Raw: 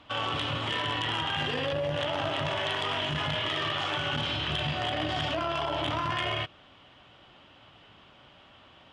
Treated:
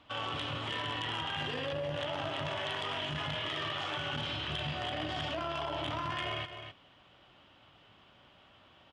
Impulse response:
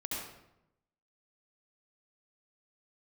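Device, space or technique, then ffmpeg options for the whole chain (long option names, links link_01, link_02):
ducked delay: -filter_complex "[0:a]asplit=3[link_01][link_02][link_03];[link_02]adelay=259,volume=-9dB[link_04];[link_03]apad=whole_len=405006[link_05];[link_04][link_05]sidechaincompress=threshold=-36dB:ratio=8:attack=44:release=157[link_06];[link_01][link_06]amix=inputs=2:normalize=0,volume=-6dB"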